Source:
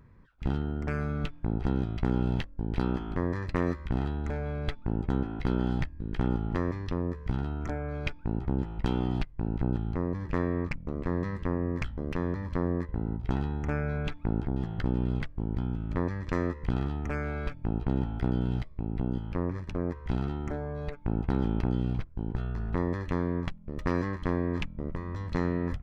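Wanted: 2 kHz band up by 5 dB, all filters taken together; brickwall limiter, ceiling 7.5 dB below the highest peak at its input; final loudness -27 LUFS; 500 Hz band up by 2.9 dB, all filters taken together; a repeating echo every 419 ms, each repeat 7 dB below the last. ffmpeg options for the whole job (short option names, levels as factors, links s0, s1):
-af "equalizer=f=500:t=o:g=3.5,equalizer=f=2000:t=o:g=6,alimiter=limit=0.119:level=0:latency=1,aecho=1:1:419|838|1257|1676|2095:0.447|0.201|0.0905|0.0407|0.0183,volume=1.78"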